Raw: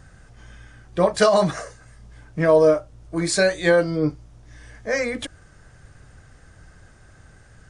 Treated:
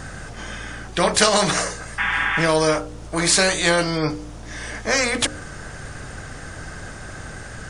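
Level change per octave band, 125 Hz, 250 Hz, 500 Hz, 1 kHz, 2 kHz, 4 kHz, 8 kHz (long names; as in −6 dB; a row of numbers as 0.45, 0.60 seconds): +1.0, 0.0, −3.5, +4.0, +6.5, +10.0, +10.5 decibels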